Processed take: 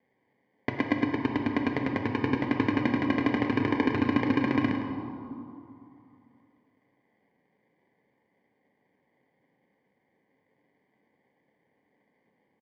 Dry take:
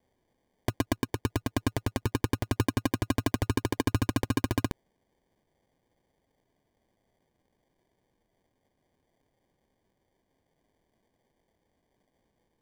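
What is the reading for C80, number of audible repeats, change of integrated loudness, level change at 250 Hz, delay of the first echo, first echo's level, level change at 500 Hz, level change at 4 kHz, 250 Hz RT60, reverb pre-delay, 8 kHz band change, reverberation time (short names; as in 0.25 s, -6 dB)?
4.0 dB, 1, +3.0 dB, +5.5 dB, 0.106 s, -10.0 dB, +3.0 dB, -2.5 dB, 2.9 s, 4 ms, under -20 dB, 2.7 s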